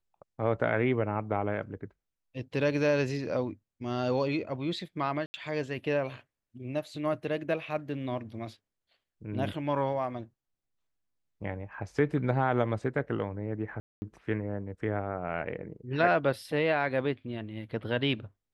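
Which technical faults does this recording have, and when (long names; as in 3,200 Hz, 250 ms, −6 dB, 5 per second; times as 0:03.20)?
0:05.26–0:05.34: drop-out 80 ms
0:13.80–0:14.02: drop-out 220 ms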